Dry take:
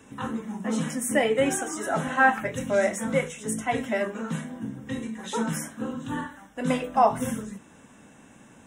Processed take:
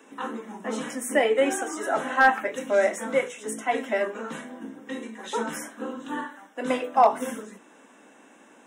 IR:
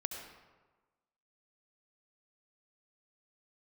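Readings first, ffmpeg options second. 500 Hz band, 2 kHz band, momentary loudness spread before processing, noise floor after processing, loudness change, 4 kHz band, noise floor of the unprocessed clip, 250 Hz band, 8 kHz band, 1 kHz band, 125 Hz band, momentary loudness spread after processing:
+2.0 dB, +1.0 dB, 12 LU, −54 dBFS, +1.0 dB, 0.0 dB, −53 dBFS, −4.0 dB, −3.0 dB, +1.5 dB, −15.0 dB, 16 LU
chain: -af "highpass=frequency=280:width=0.5412,highpass=frequency=280:width=1.3066,equalizer=frequency=11000:width=0.32:gain=-5.5,asoftclip=type=hard:threshold=-11dB,volume=2dB"

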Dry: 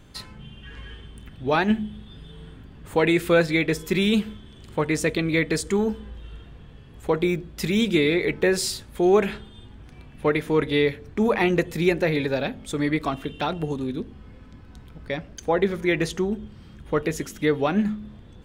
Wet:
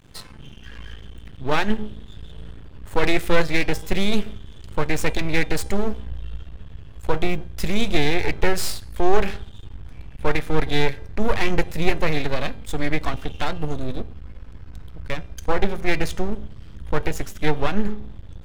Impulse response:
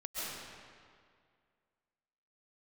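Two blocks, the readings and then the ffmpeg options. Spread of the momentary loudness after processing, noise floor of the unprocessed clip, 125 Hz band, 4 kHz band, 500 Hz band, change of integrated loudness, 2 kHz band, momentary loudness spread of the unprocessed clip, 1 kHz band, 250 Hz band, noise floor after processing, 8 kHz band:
20 LU, −46 dBFS, +1.0 dB, +1.0 dB, −3.0 dB, −1.5 dB, +0.5 dB, 19 LU, +2.0 dB, −3.5 dB, −41 dBFS, −1.0 dB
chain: -af "aeval=exprs='max(val(0),0)':channel_layout=same,bandreject=frequency=399.9:width_type=h:width=4,bandreject=frequency=799.8:width_type=h:width=4,bandreject=frequency=1199.7:width_type=h:width=4,bandreject=frequency=1599.6:width_type=h:width=4,bandreject=frequency=1999.5:width_type=h:width=4,bandreject=frequency=2399.4:width_type=h:width=4,bandreject=frequency=2799.3:width_type=h:width=4,bandreject=frequency=3199.2:width_type=h:width=4,bandreject=frequency=3599.1:width_type=h:width=4,bandreject=frequency=3999:width_type=h:width=4,bandreject=frequency=4398.9:width_type=h:width=4,bandreject=frequency=4798.8:width_type=h:width=4,bandreject=frequency=5198.7:width_type=h:width=4,bandreject=frequency=5598.6:width_type=h:width=4,bandreject=frequency=5998.5:width_type=h:width=4,bandreject=frequency=6398.4:width_type=h:width=4,bandreject=frequency=6798.3:width_type=h:width=4,bandreject=frequency=7198.2:width_type=h:width=4,bandreject=frequency=7598.1:width_type=h:width=4,bandreject=frequency=7998:width_type=h:width=4,bandreject=frequency=8397.9:width_type=h:width=4,bandreject=frequency=8797.8:width_type=h:width=4,bandreject=frequency=9197.7:width_type=h:width=4,bandreject=frequency=9597.6:width_type=h:width=4,bandreject=frequency=9997.5:width_type=h:width=4,bandreject=frequency=10397.4:width_type=h:width=4,bandreject=frequency=10797.3:width_type=h:width=4,bandreject=frequency=11197.2:width_type=h:width=4,bandreject=frequency=11597.1:width_type=h:width=4,bandreject=frequency=11997:width_type=h:width=4,asubboost=boost=3:cutoff=120,volume=3.5dB"

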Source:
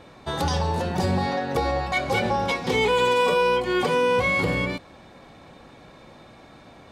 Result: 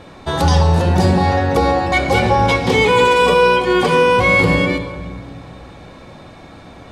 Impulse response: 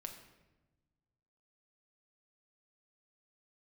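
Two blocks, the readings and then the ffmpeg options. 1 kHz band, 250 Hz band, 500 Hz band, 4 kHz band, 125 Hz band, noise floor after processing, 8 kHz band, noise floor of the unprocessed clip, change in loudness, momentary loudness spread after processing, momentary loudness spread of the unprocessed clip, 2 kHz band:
+9.0 dB, +10.0 dB, +8.0 dB, +7.5 dB, +12.0 dB, −39 dBFS, +7.5 dB, −49 dBFS, +9.0 dB, 11 LU, 6 LU, +9.0 dB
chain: -filter_complex "[0:a]asplit=2[link_01][link_02];[1:a]atrim=start_sample=2205,asetrate=22932,aresample=44100,lowshelf=frequency=190:gain=5[link_03];[link_02][link_03]afir=irnorm=-1:irlink=0,volume=4dB[link_04];[link_01][link_04]amix=inputs=2:normalize=0"

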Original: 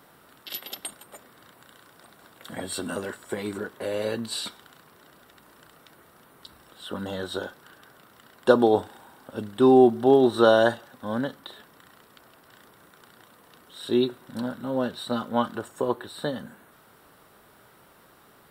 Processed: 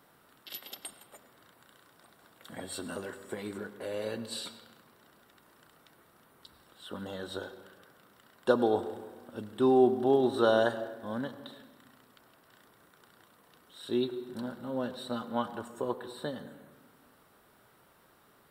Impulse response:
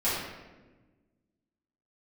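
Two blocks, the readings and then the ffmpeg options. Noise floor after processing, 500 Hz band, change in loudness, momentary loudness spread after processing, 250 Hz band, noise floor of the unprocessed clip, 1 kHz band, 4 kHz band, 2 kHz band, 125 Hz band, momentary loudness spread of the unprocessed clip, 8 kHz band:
−63 dBFS, −7.0 dB, −7.0 dB, 20 LU, −7.5 dB, −56 dBFS, −7.0 dB, −7.5 dB, −7.5 dB, −7.5 dB, 19 LU, can't be measured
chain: -filter_complex "[0:a]asplit=2[link_01][link_02];[1:a]atrim=start_sample=2205,adelay=90[link_03];[link_02][link_03]afir=irnorm=-1:irlink=0,volume=-23.5dB[link_04];[link_01][link_04]amix=inputs=2:normalize=0,volume=-7.5dB"

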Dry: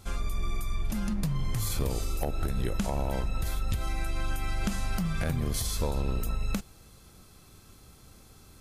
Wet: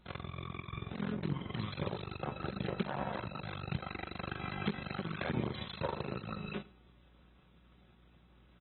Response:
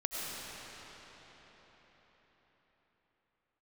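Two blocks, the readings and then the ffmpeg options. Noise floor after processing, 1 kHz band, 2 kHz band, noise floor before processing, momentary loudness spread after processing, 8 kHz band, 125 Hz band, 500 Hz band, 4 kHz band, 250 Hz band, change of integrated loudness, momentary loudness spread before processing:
−63 dBFS, −3.0 dB, −2.5 dB, −55 dBFS, 6 LU, below −40 dB, −8.0 dB, −3.5 dB, −5.5 dB, −5.0 dB, −7.5 dB, 5 LU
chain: -filter_complex "[0:a]flanger=delay=18.5:depth=7.9:speed=0.62[link_01];[1:a]atrim=start_sample=2205,atrim=end_sample=3087,asetrate=70560,aresample=44100[link_02];[link_01][link_02]afir=irnorm=-1:irlink=0,aeval=exprs='0.0596*(cos(1*acos(clip(val(0)/0.0596,-1,1)))-cos(1*PI/2))+0.0211*(cos(2*acos(clip(val(0)/0.0596,-1,1)))-cos(2*PI/2))+0.015*(cos(3*acos(clip(val(0)/0.0596,-1,1)))-cos(3*PI/2))+0.00119*(cos(6*acos(clip(val(0)/0.0596,-1,1)))-cos(6*PI/2))':channel_layout=same,aeval=exprs='abs(val(0))':channel_layout=same,asplit=2[link_03][link_04];[link_04]acompressor=threshold=-48dB:ratio=6,volume=-1.5dB[link_05];[link_03][link_05]amix=inputs=2:normalize=0,highpass=frequency=89:width=0.5412,highpass=frequency=89:width=1.3066,aecho=1:1:106:0.075,acrusher=bits=9:mode=log:mix=0:aa=0.000001,aeval=exprs='val(0)+0.000282*(sin(2*PI*60*n/s)+sin(2*PI*2*60*n/s)/2+sin(2*PI*3*60*n/s)/3+sin(2*PI*4*60*n/s)/4+sin(2*PI*5*60*n/s)/5)':channel_layout=same,aecho=1:1:5.4:0.31,volume=7dB" -ar 24000 -c:a aac -b:a 16k

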